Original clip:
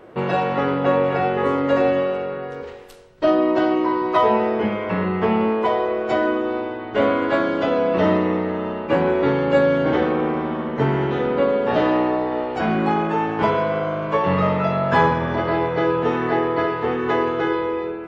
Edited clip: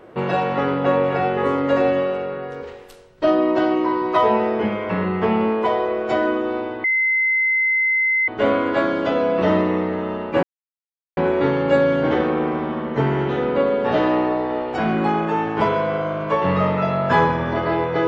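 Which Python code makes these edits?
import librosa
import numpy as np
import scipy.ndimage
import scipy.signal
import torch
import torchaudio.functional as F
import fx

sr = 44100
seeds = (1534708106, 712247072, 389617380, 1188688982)

y = fx.edit(x, sr, fx.insert_tone(at_s=6.84, length_s=1.44, hz=2060.0, db=-15.5),
    fx.insert_silence(at_s=8.99, length_s=0.74), tone=tone)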